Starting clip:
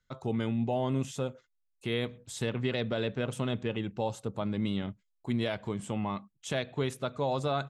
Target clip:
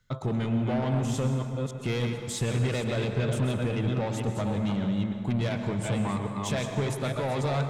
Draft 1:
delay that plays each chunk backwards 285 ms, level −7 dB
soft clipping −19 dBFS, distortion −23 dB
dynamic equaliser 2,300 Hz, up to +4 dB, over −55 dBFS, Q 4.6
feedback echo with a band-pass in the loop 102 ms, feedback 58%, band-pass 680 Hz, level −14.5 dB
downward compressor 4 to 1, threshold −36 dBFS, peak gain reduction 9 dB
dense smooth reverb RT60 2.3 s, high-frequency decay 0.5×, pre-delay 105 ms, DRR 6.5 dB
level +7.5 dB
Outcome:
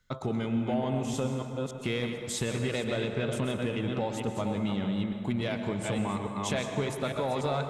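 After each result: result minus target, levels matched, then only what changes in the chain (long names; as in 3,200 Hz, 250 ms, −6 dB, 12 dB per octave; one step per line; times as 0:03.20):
soft clipping: distortion −13 dB; 125 Hz band −4.0 dB
change: soft clipping −30 dBFS, distortion −10 dB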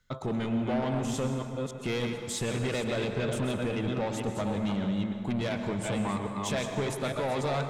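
125 Hz band −4.0 dB
add after downward compressor: parametric band 120 Hz +7.5 dB 0.81 octaves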